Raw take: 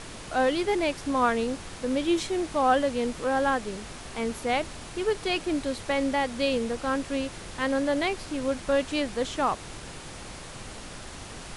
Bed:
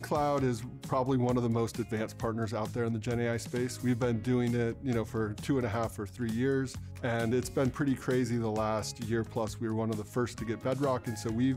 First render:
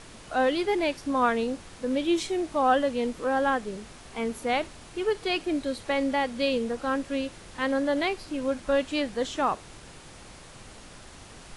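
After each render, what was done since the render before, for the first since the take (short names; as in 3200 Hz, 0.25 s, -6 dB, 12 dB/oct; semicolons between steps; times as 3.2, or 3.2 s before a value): noise print and reduce 6 dB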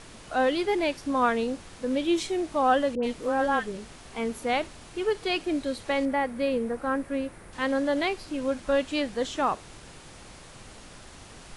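2.95–3.98 dispersion highs, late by 82 ms, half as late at 1200 Hz; 6.05–7.53 band shelf 4500 Hz -10 dB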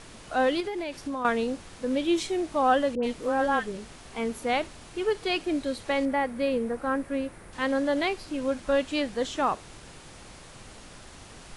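0.6–1.25 compressor 10:1, threshold -28 dBFS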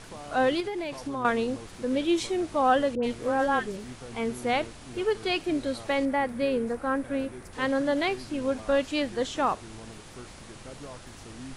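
add bed -14 dB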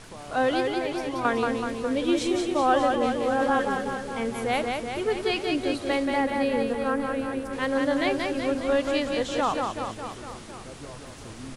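reverse bouncing-ball echo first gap 0.18 s, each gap 1.1×, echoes 5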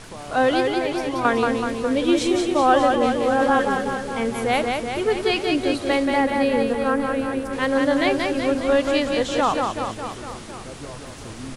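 gain +5 dB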